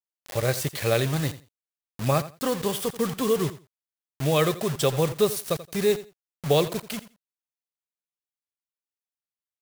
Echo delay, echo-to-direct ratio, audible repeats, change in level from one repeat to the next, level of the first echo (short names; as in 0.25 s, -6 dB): 85 ms, -15.5 dB, 2, -15.5 dB, -15.5 dB